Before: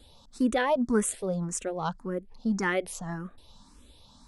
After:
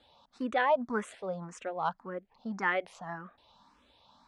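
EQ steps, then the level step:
high-pass filter 240 Hz 6 dB per octave
low-pass filter 2,800 Hz 12 dB per octave
low shelf with overshoot 540 Hz −6 dB, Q 1.5
0.0 dB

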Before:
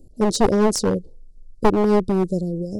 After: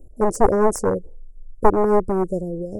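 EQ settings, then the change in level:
Butterworth band-reject 3,700 Hz, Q 0.51
parametric band 190 Hz −10 dB 1.9 octaves
high-shelf EQ 8,900 Hz −7.5 dB
+5.0 dB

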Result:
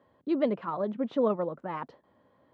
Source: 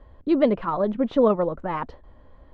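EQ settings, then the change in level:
high-pass filter 130 Hz 24 dB per octave
−7.5 dB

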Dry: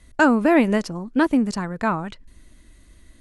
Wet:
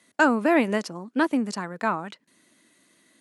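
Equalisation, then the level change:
high-pass filter 170 Hz 24 dB per octave
low-shelf EQ 310 Hz −6.5 dB
−1.5 dB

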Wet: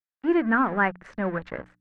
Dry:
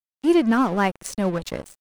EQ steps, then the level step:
low-pass with resonance 1,700 Hz, resonance Q 3.4
mains-hum notches 60/120/180/240/300 Hz
−5.0 dB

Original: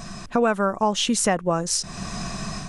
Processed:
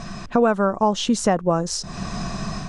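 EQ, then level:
dynamic equaliser 2,300 Hz, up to −8 dB, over −42 dBFS, Q 1.2
high-frequency loss of the air 84 metres
+3.5 dB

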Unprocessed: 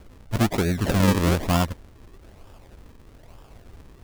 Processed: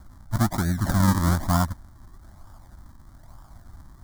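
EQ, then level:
phaser with its sweep stopped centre 1,100 Hz, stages 4
+1.5 dB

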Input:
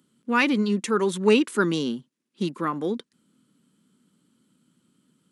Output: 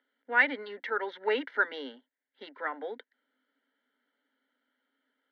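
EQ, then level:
Chebyshev high-pass filter 270 Hz, order 6
transistor ladder low-pass 2,600 Hz, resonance 50%
phaser with its sweep stopped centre 1,700 Hz, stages 8
+8.0 dB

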